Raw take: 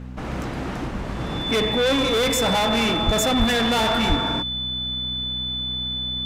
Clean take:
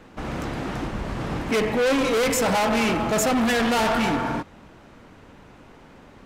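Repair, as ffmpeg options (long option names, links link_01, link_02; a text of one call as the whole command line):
ffmpeg -i in.wav -filter_complex "[0:a]bandreject=frequency=62.9:width_type=h:width=4,bandreject=frequency=125.8:width_type=h:width=4,bandreject=frequency=188.7:width_type=h:width=4,bandreject=frequency=251.6:width_type=h:width=4,bandreject=frequency=3500:width=30,asplit=3[link_01][link_02][link_03];[link_01]afade=type=out:start_time=3.05:duration=0.02[link_04];[link_02]highpass=frequency=140:width=0.5412,highpass=frequency=140:width=1.3066,afade=type=in:start_time=3.05:duration=0.02,afade=type=out:start_time=3.17:duration=0.02[link_05];[link_03]afade=type=in:start_time=3.17:duration=0.02[link_06];[link_04][link_05][link_06]amix=inputs=3:normalize=0,asplit=3[link_07][link_08][link_09];[link_07]afade=type=out:start_time=3.38:duration=0.02[link_10];[link_08]highpass=frequency=140:width=0.5412,highpass=frequency=140:width=1.3066,afade=type=in:start_time=3.38:duration=0.02,afade=type=out:start_time=3.5:duration=0.02[link_11];[link_09]afade=type=in:start_time=3.5:duration=0.02[link_12];[link_10][link_11][link_12]amix=inputs=3:normalize=0,asplit=3[link_13][link_14][link_15];[link_13]afade=type=out:start_time=4.08:duration=0.02[link_16];[link_14]highpass=frequency=140:width=0.5412,highpass=frequency=140:width=1.3066,afade=type=in:start_time=4.08:duration=0.02,afade=type=out:start_time=4.2:duration=0.02[link_17];[link_15]afade=type=in:start_time=4.2:duration=0.02[link_18];[link_16][link_17][link_18]amix=inputs=3:normalize=0" out.wav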